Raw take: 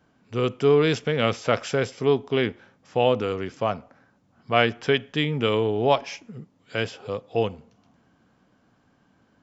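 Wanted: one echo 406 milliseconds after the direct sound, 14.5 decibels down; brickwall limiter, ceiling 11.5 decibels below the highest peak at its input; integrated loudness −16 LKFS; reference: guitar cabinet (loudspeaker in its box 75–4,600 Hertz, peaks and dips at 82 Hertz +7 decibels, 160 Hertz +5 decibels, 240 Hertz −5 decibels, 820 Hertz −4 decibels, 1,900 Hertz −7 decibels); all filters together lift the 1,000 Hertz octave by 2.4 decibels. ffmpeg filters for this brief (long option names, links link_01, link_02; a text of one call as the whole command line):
ffmpeg -i in.wav -af "equalizer=frequency=1000:width_type=o:gain=6,alimiter=limit=-12.5dB:level=0:latency=1,highpass=75,equalizer=frequency=82:width_type=q:width=4:gain=7,equalizer=frequency=160:width_type=q:width=4:gain=5,equalizer=frequency=240:width_type=q:width=4:gain=-5,equalizer=frequency=820:width_type=q:width=4:gain=-4,equalizer=frequency=1900:width_type=q:width=4:gain=-7,lowpass=frequency=4600:width=0.5412,lowpass=frequency=4600:width=1.3066,aecho=1:1:406:0.188,volume=11dB" out.wav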